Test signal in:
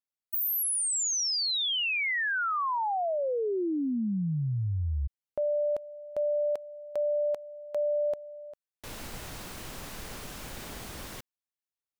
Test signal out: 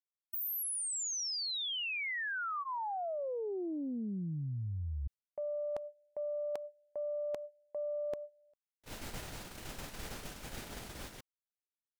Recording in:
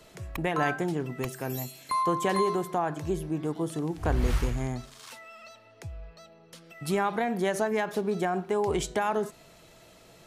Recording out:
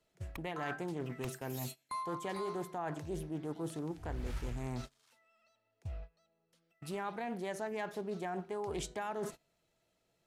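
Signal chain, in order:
notch filter 1,100 Hz, Q 13
noise gate −40 dBFS, range −24 dB
reversed playback
downward compressor 5 to 1, threshold −37 dBFS
reversed playback
highs frequency-modulated by the lows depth 0.33 ms

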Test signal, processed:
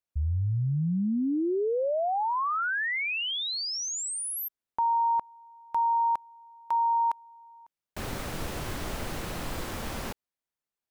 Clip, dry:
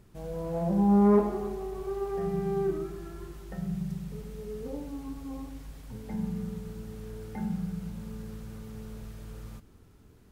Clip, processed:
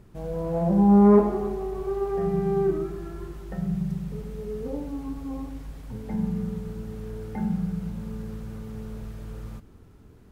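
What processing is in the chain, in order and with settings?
high-shelf EQ 2,400 Hz −7 dB
level +5.5 dB

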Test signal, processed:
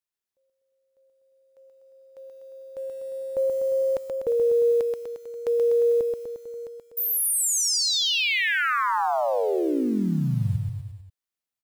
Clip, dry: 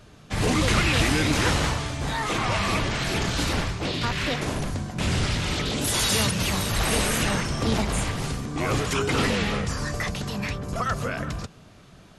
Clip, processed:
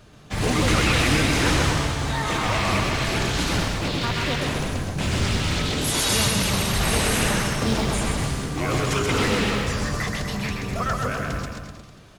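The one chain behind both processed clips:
floating-point word with a short mantissa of 4 bits
bouncing-ball delay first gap 130 ms, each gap 0.9×, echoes 5

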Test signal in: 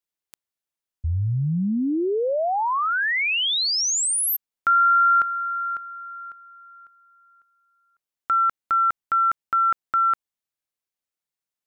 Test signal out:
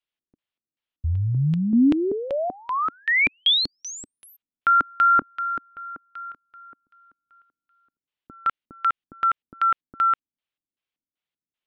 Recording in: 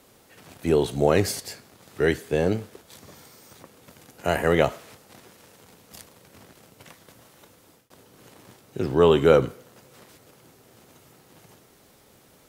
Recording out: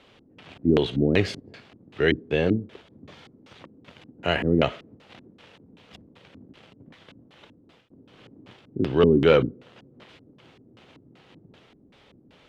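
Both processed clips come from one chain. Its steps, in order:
gain into a clipping stage and back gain 8 dB
dynamic equaliser 840 Hz, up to −4 dB, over −38 dBFS, Q 1.7
auto-filter low-pass square 2.6 Hz 280–3,100 Hz

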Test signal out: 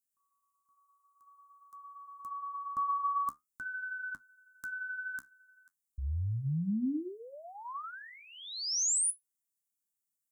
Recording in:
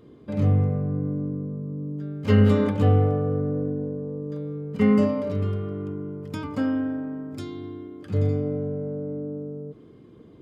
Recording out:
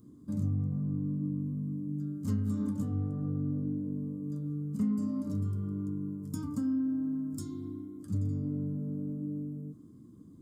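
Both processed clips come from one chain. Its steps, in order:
drawn EQ curve 100 Hz 0 dB, 280 Hz +4 dB, 430 Hz −15 dB, 810 Hz −15 dB, 1,100 Hz −6 dB, 2,500 Hz −23 dB, 7,500 Hz +11 dB
downward compressor 4 to 1, threshold −25 dBFS
flanger 0.5 Hz, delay 8.8 ms, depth 7.7 ms, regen −57%

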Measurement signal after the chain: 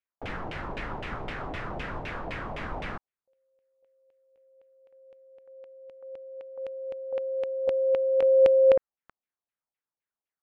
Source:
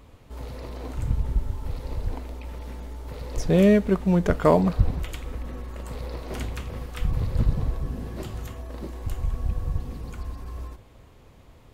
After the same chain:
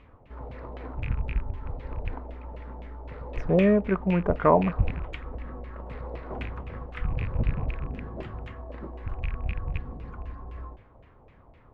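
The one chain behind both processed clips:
loose part that buzzes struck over −26 dBFS, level −26 dBFS
auto-filter low-pass saw down 3.9 Hz 630–2,700 Hz
level −4 dB

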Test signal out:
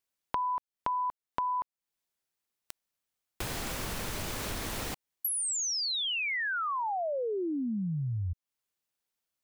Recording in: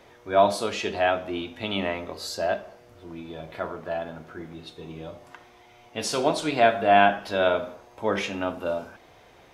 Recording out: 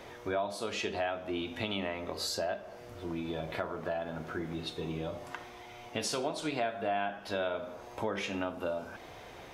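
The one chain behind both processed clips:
downward compressor 5 to 1, threshold −37 dBFS
level +4.5 dB

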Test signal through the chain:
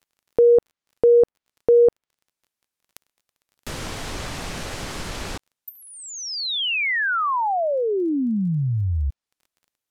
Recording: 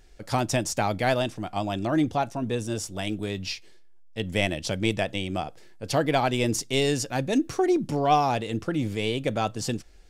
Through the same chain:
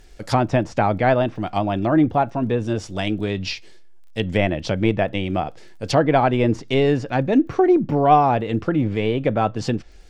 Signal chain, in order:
treble cut that deepens with the level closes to 1,800 Hz, closed at −23.5 dBFS
surface crackle 24 per second −53 dBFS
level +7 dB

